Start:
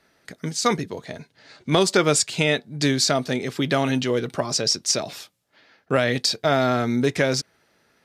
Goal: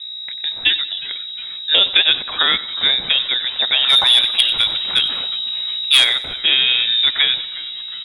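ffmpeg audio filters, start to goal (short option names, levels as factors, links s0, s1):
-filter_complex "[0:a]aeval=exprs='val(0)+0.02*(sin(2*PI*60*n/s)+sin(2*PI*2*60*n/s)/2+sin(2*PI*3*60*n/s)/3+sin(2*PI*4*60*n/s)/4+sin(2*PI*5*60*n/s)/5)':c=same,lowpass=f=3300:t=q:w=0.5098,lowpass=f=3300:t=q:w=0.6013,lowpass=f=3300:t=q:w=0.9,lowpass=f=3300:t=q:w=2.563,afreqshift=-3900,asplit=2[s0][s1];[s1]asplit=5[s2][s3][s4][s5][s6];[s2]adelay=361,afreqshift=-140,volume=0.112[s7];[s3]adelay=722,afreqshift=-280,volume=0.0617[s8];[s4]adelay=1083,afreqshift=-420,volume=0.0339[s9];[s5]adelay=1444,afreqshift=-560,volume=0.0186[s10];[s6]adelay=1805,afreqshift=-700,volume=0.0102[s11];[s7][s8][s9][s10][s11]amix=inputs=5:normalize=0[s12];[s0][s12]amix=inputs=2:normalize=0,asplit=3[s13][s14][s15];[s13]afade=t=out:st=3.88:d=0.02[s16];[s14]aeval=exprs='0.473*(cos(1*acos(clip(val(0)/0.473,-1,1)))-cos(1*PI/2))+0.133*(cos(5*acos(clip(val(0)/0.473,-1,1)))-cos(5*PI/2))+0.0237*(cos(7*acos(clip(val(0)/0.473,-1,1)))-cos(7*PI/2))':c=same,afade=t=in:st=3.88:d=0.02,afade=t=out:st=6.03:d=0.02[s17];[s15]afade=t=in:st=6.03:d=0.02[s18];[s16][s17][s18]amix=inputs=3:normalize=0,asplit=2[s19][s20];[s20]aecho=0:1:93|186|279|372:0.141|0.0622|0.0273|0.012[s21];[s19][s21]amix=inputs=2:normalize=0,volume=1.68"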